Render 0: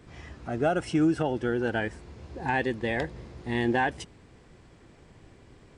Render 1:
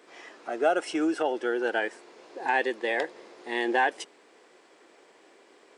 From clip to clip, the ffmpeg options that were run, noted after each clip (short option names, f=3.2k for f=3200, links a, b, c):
-af "highpass=f=360:w=0.5412,highpass=f=360:w=1.3066,volume=2.5dB"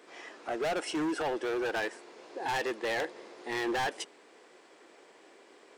-af "asoftclip=type=hard:threshold=-28.5dB"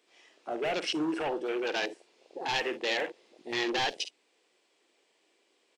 -af "highshelf=f=2.1k:t=q:w=1.5:g=7,aecho=1:1:50|62:0.299|0.224,afwtdn=0.0178"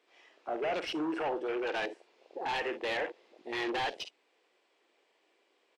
-filter_complex "[0:a]asplit=2[a][b];[b]highpass=f=720:p=1,volume=13dB,asoftclip=type=tanh:threshold=-17.5dB[c];[a][c]amix=inputs=2:normalize=0,lowpass=f=1.4k:p=1,volume=-6dB,volume=-3.5dB"